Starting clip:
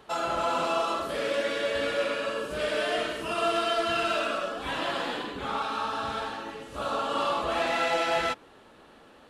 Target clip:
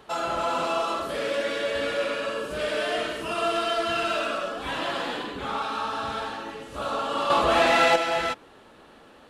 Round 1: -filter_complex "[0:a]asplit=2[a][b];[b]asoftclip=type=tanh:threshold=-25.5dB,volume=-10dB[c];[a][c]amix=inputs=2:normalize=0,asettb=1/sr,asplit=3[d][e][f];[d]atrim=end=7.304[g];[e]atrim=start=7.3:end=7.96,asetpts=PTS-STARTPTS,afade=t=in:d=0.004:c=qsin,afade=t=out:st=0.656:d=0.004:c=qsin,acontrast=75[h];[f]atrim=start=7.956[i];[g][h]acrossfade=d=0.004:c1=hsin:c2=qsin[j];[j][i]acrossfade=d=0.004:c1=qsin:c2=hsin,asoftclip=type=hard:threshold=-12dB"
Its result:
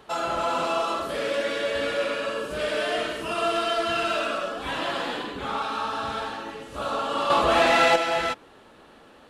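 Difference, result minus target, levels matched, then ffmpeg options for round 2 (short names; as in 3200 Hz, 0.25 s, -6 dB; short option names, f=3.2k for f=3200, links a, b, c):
soft clip: distortion -6 dB
-filter_complex "[0:a]asplit=2[a][b];[b]asoftclip=type=tanh:threshold=-33dB,volume=-10dB[c];[a][c]amix=inputs=2:normalize=0,asettb=1/sr,asplit=3[d][e][f];[d]atrim=end=7.304[g];[e]atrim=start=7.3:end=7.96,asetpts=PTS-STARTPTS,afade=t=in:d=0.004:c=qsin,afade=t=out:st=0.656:d=0.004:c=qsin,acontrast=75[h];[f]atrim=start=7.956[i];[g][h]acrossfade=d=0.004:c1=hsin:c2=qsin[j];[j][i]acrossfade=d=0.004:c1=qsin:c2=hsin,asoftclip=type=hard:threshold=-12dB"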